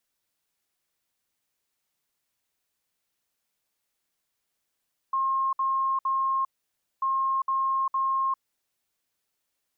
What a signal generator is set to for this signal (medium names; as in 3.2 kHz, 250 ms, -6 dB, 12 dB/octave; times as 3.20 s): beep pattern sine 1.07 kHz, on 0.40 s, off 0.06 s, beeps 3, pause 0.57 s, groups 2, -22.5 dBFS